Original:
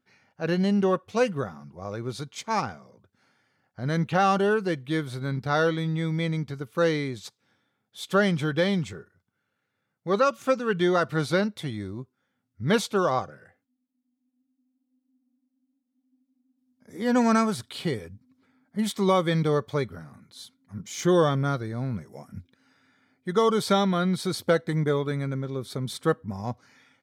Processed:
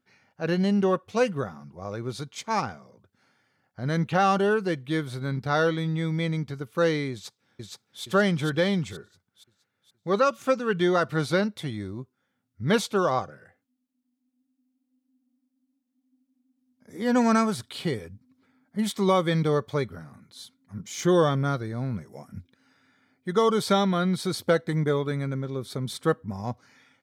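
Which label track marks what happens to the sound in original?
7.120000	8.020000	echo throw 470 ms, feedback 45%, level -1 dB

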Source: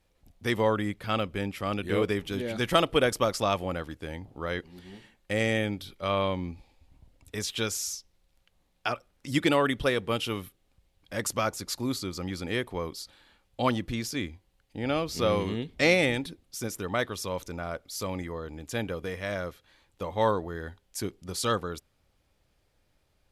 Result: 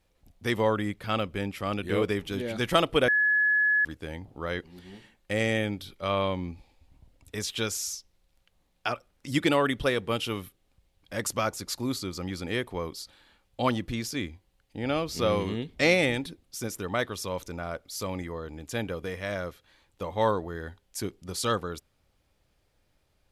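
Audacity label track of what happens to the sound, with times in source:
3.080000	3.850000	bleep 1.7 kHz -20 dBFS

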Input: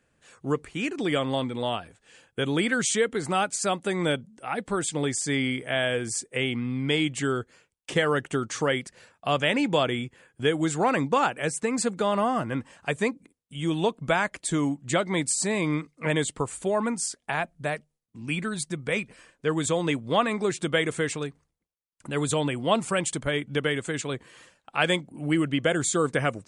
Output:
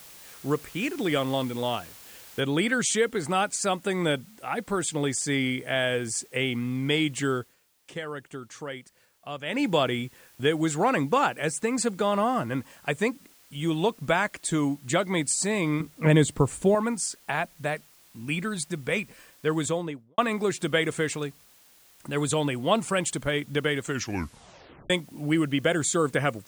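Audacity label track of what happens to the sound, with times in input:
2.400000	2.400000	noise floor step -48 dB -57 dB
7.360000	9.640000	dip -11.5 dB, fades 0.19 s
15.800000	16.750000	bass shelf 400 Hz +11 dB
19.550000	20.180000	studio fade out
23.810000	23.810000	tape stop 1.09 s

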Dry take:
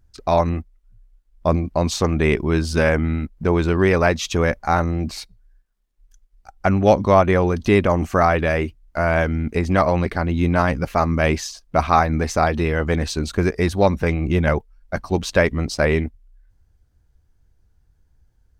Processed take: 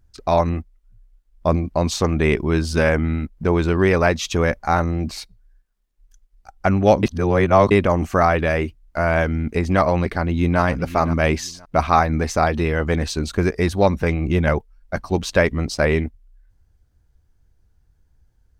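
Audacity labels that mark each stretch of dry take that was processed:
7.030000	7.710000	reverse
10.060000	10.610000	echo throw 520 ms, feedback 20%, level -13.5 dB

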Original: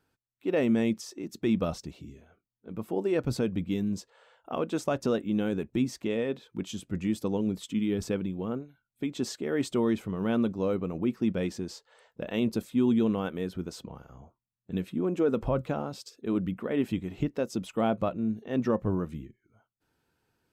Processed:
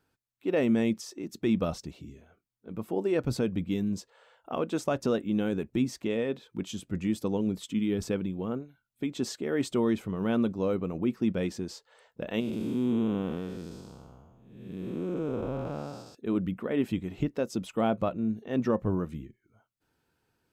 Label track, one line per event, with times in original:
12.400000	16.150000	spectral blur width 377 ms

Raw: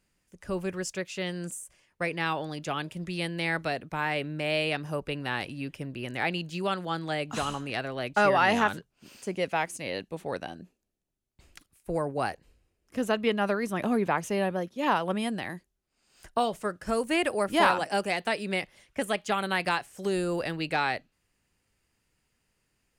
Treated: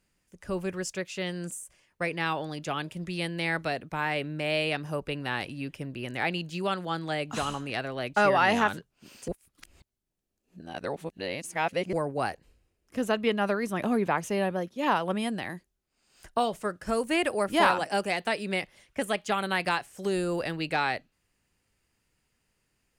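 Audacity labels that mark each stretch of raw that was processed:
9.280000	11.930000	reverse

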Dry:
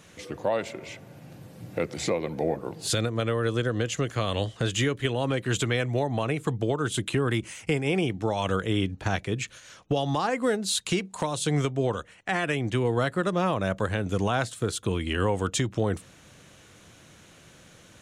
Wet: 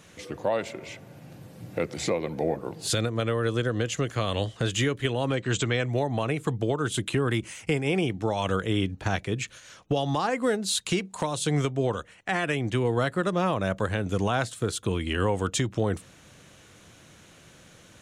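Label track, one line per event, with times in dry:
5.350000	5.910000	brick-wall FIR low-pass 8.4 kHz

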